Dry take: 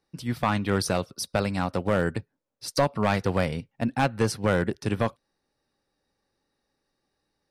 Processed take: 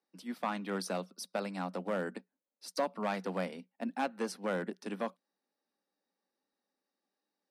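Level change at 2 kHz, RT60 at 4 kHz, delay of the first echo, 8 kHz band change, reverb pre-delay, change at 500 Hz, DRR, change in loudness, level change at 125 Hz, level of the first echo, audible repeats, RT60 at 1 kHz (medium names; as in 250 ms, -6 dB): -10.5 dB, no reverb, no echo, -11.5 dB, no reverb, -9.5 dB, no reverb, -10.5 dB, -18.5 dB, no echo, no echo, no reverb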